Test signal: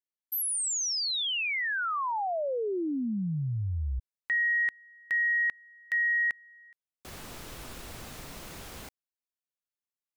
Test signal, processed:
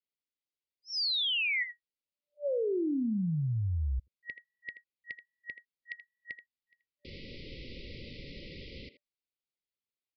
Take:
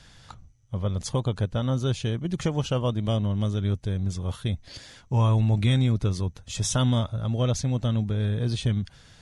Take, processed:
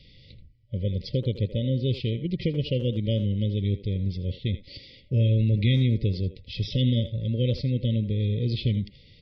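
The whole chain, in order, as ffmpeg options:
ffmpeg -i in.wav -filter_complex "[0:a]aresample=11025,aresample=44100,afftfilt=real='re*(1-between(b*sr/4096,590,1900))':imag='im*(1-between(b*sr/4096,590,1900))':win_size=4096:overlap=0.75,asplit=2[link_01][link_02];[link_02]adelay=80,highpass=300,lowpass=3400,asoftclip=type=hard:threshold=-21.5dB,volume=-11dB[link_03];[link_01][link_03]amix=inputs=2:normalize=0" out.wav

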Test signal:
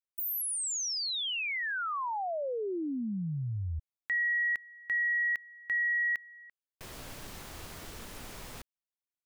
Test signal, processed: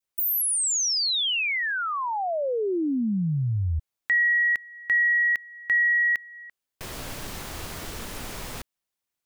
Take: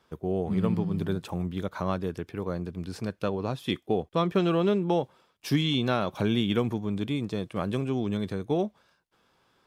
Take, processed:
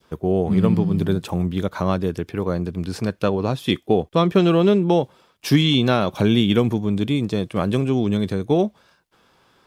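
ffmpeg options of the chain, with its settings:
ffmpeg -i in.wav -af "adynamicequalizer=threshold=0.00708:dfrequency=1200:dqfactor=0.71:tfrequency=1200:tqfactor=0.71:attack=5:release=100:ratio=0.375:range=2:mode=cutabove:tftype=bell,volume=9dB" out.wav

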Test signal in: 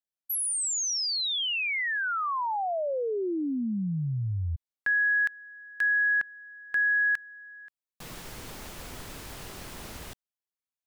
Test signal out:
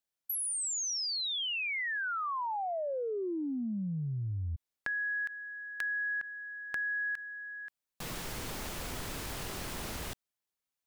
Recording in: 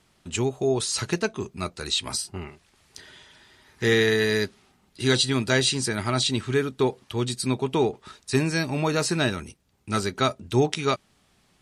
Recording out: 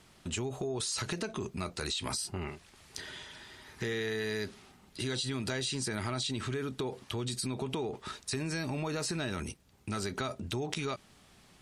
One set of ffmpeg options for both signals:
ffmpeg -i in.wav -af "acompressor=threshold=-38dB:ratio=8:attack=12:release=30:knee=6:detection=rms,volume=3.5dB" out.wav

